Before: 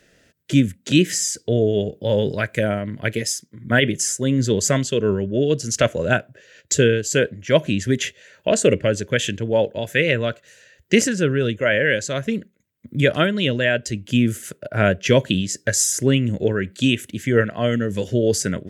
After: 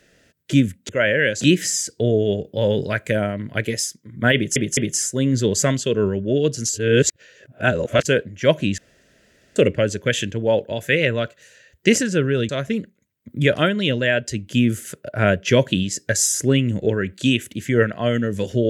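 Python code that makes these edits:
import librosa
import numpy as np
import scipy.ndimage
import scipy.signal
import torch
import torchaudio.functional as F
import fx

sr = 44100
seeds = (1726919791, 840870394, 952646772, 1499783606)

y = fx.edit(x, sr, fx.stutter(start_s=3.83, slice_s=0.21, count=3),
    fx.reverse_span(start_s=5.75, length_s=1.37),
    fx.room_tone_fill(start_s=7.84, length_s=0.78),
    fx.move(start_s=11.55, length_s=0.52, to_s=0.89), tone=tone)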